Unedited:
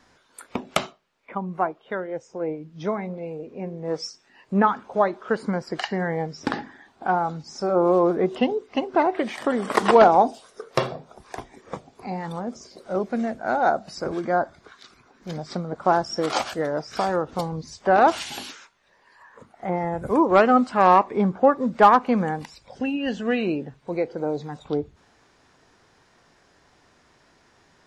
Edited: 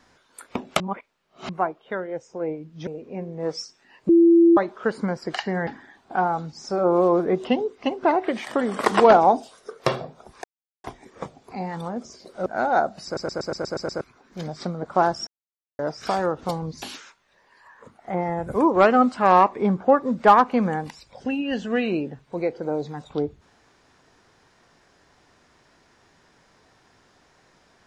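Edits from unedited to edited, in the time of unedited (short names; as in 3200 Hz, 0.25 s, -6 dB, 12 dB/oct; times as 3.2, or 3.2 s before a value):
0.8–1.49 reverse
2.87–3.32 cut
4.54–5.02 bleep 337 Hz -10.5 dBFS
6.12–6.58 cut
11.35 insert silence 0.40 s
12.97–13.36 cut
13.95 stutter in place 0.12 s, 8 plays
16.17–16.69 mute
17.72–18.37 cut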